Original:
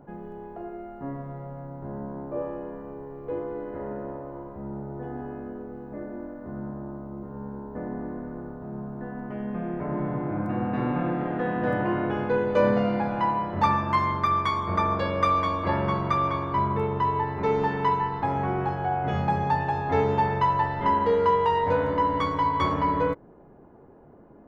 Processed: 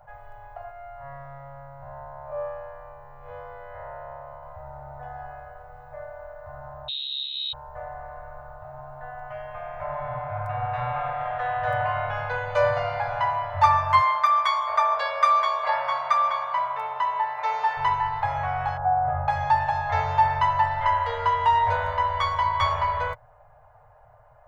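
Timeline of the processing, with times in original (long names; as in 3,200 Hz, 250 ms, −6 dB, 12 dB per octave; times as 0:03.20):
0:00.71–0:04.43: spectrum smeared in time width 94 ms
0:06.88–0:07.53: voice inversion scrambler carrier 4,000 Hz
0:14.00–0:17.77: Bessel high-pass filter 350 Hz, order 4
0:18.77–0:19.28: low-pass filter 1,300 Hz 24 dB per octave
whole clip: elliptic band-stop filter 110–630 Hz, stop band 40 dB; comb filter 6.6 ms, depth 35%; level +4.5 dB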